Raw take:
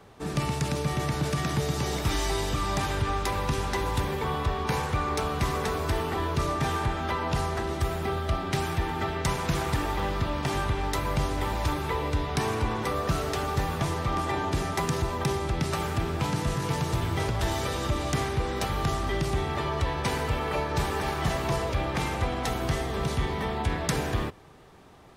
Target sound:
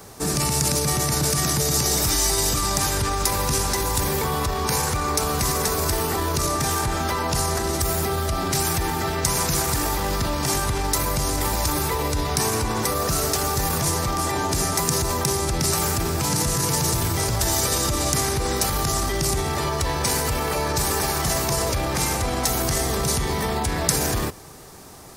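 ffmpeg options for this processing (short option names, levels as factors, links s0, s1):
-af "alimiter=level_in=1.06:limit=0.0631:level=0:latency=1:release=21,volume=0.944,aexciter=amount=5.2:drive=4.4:freq=4600,volume=2.51"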